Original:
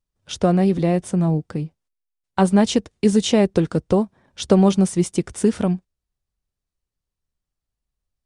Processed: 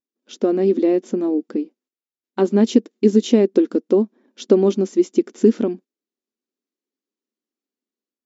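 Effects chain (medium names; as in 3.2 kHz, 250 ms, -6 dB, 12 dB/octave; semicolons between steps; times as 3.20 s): brick-wall FIR band-pass 210–7600 Hz; level rider gain up to 5.5 dB; resonant low shelf 510 Hz +10 dB, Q 1.5; trim -9 dB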